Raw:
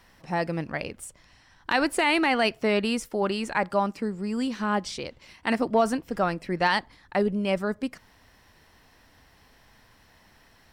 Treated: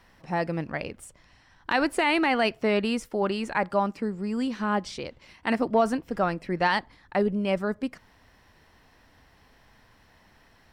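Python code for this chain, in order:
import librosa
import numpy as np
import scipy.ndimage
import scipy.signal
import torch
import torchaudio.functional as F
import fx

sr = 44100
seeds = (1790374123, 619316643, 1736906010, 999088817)

y = fx.high_shelf(x, sr, hz=4300.0, db=-6.5)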